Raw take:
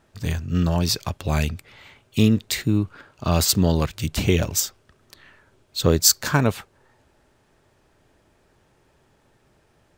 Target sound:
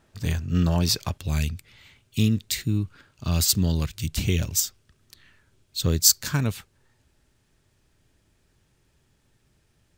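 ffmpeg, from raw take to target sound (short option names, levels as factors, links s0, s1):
-af "asetnsamples=n=441:p=0,asendcmd='1.18 equalizer g -13',equalizer=f=710:w=0.42:g=-3"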